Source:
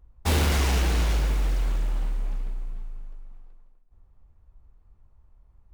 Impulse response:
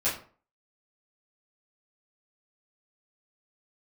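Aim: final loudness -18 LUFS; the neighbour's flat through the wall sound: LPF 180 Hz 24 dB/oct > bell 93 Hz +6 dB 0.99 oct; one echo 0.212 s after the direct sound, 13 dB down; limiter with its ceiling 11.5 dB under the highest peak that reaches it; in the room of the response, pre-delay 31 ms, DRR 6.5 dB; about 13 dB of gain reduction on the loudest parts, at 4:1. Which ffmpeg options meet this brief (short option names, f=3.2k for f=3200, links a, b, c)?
-filter_complex "[0:a]acompressor=threshold=-36dB:ratio=4,alimiter=level_in=12.5dB:limit=-24dB:level=0:latency=1,volume=-12.5dB,aecho=1:1:212:0.224,asplit=2[a][b];[1:a]atrim=start_sample=2205,adelay=31[c];[b][c]afir=irnorm=-1:irlink=0,volume=-16dB[d];[a][d]amix=inputs=2:normalize=0,lowpass=f=180:w=0.5412,lowpass=f=180:w=1.3066,equalizer=f=93:t=o:w=0.99:g=6,volume=27dB"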